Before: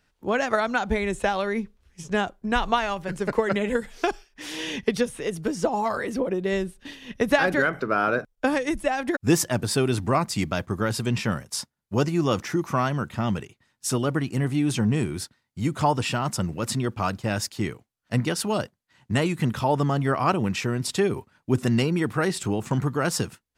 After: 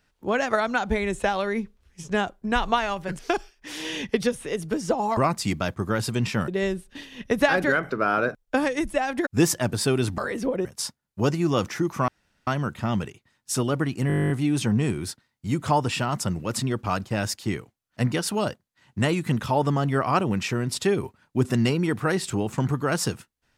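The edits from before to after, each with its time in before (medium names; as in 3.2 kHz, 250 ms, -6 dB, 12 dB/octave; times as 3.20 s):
3.19–3.93 s: delete
5.91–6.38 s: swap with 10.08–11.39 s
12.82 s: insert room tone 0.39 s
14.43 s: stutter 0.02 s, 12 plays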